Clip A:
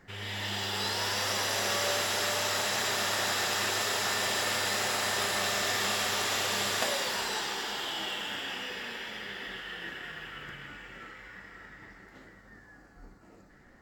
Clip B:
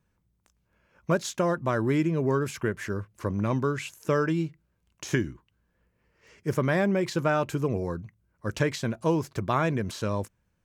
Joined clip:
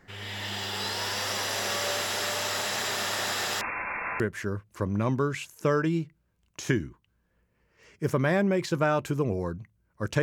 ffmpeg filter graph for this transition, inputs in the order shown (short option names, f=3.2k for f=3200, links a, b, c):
-filter_complex "[0:a]asettb=1/sr,asplit=3[a][b][c];[a]atrim=end=3.614[d];[b]atrim=start=3.61:end=4.2,asetpts=PTS-STARTPTS,afade=t=in:d=0.004:c=qsin,afade=t=out:st=0.586:d=0.004:c=qsin,lowpass=f=2.4k:t=q:w=0.5098,lowpass=f=2.4k:t=q:w=0.6013,lowpass=f=2.4k:t=q:w=0.9,lowpass=f=2.4k:t=q:w=2.563,afreqshift=-2800[e];[c]atrim=start=4.196[f];[d][e]acrossfade=d=0.004:c1=hsin:c2=qsin[g];[g][f]acrossfade=d=0.004:c1=qsin:c2=hsin,apad=whole_dur=10.22,atrim=end=10.22,atrim=end=4.202[h];[1:a]atrim=start=2.638:end=8.66[i];[h][i]acrossfade=d=0.004:c1=hsin:c2=hsin"